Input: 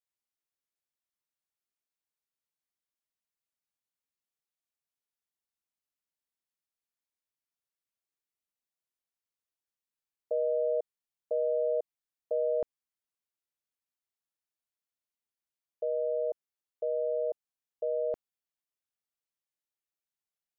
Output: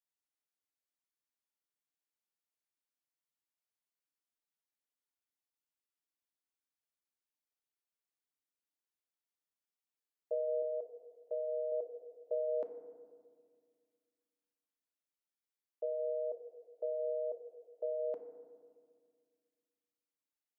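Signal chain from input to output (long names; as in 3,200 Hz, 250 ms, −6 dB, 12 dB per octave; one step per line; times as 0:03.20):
0:10.62–0:11.72: low-shelf EQ 460 Hz −6 dB
high-pass filter 220 Hz 24 dB per octave
feedback delay network reverb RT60 1.9 s, low-frequency decay 1.5×, high-frequency decay 0.25×, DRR 5.5 dB
level −5.5 dB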